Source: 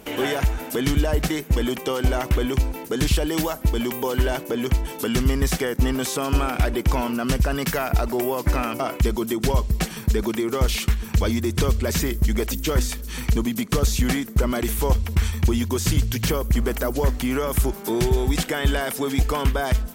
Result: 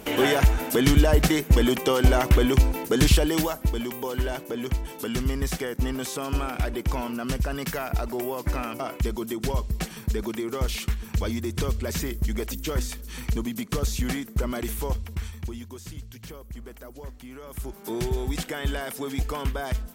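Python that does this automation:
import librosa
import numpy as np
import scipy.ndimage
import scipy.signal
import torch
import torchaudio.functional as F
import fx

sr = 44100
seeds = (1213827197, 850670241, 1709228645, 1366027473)

y = fx.gain(x, sr, db=fx.line((3.09, 2.5), (3.86, -6.0), (14.72, -6.0), (15.92, -19.0), (17.38, -19.0), (17.92, -7.0)))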